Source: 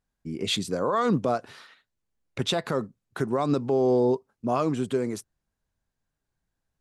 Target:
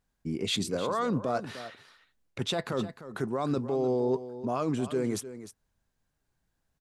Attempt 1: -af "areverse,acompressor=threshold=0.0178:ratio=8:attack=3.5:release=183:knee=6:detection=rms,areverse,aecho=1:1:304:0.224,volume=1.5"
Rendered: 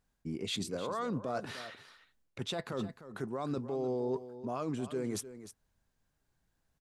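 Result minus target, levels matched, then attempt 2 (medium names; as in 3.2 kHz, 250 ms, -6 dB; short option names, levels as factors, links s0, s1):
compression: peak gain reduction +6.5 dB
-af "areverse,acompressor=threshold=0.0422:ratio=8:attack=3.5:release=183:knee=6:detection=rms,areverse,aecho=1:1:304:0.224,volume=1.5"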